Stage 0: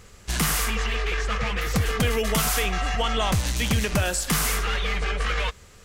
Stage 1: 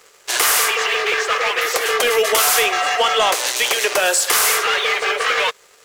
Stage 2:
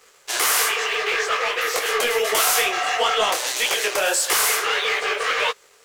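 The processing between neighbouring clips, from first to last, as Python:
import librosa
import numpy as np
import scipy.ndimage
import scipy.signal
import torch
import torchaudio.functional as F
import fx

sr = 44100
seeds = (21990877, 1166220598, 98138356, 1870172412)

y1 = scipy.signal.sosfilt(scipy.signal.butter(8, 380.0, 'highpass', fs=sr, output='sos'), x)
y1 = fx.leveller(y1, sr, passes=2)
y1 = F.gain(torch.from_numpy(y1), 3.5).numpy()
y2 = fx.detune_double(y1, sr, cents=56)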